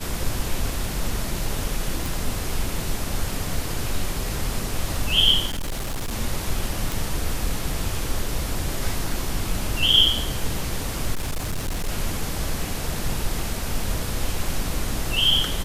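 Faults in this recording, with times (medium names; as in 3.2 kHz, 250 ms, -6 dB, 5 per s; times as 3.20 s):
2.06 s: pop
5.46–6.13 s: clipped -23.5 dBFS
6.92 s: pop
11.14–11.89 s: clipped -22 dBFS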